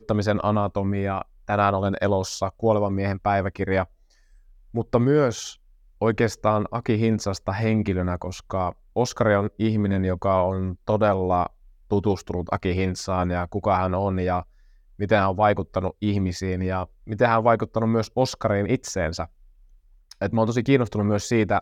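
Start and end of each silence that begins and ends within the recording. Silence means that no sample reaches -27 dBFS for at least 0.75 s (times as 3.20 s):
3.83–4.75 s
19.25–20.12 s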